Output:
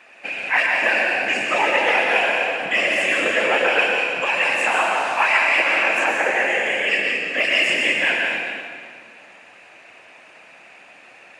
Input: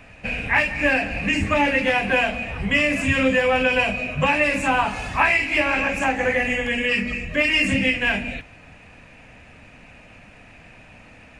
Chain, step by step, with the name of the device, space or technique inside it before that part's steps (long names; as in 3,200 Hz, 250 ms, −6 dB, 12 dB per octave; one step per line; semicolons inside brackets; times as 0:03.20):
0:03.78–0:04.60: parametric band 440 Hz −5.5 dB 2.4 octaves
whispering ghost (random phases in short frames; high-pass filter 530 Hz 12 dB per octave; convolution reverb RT60 1.9 s, pre-delay 102 ms, DRR −0.5 dB)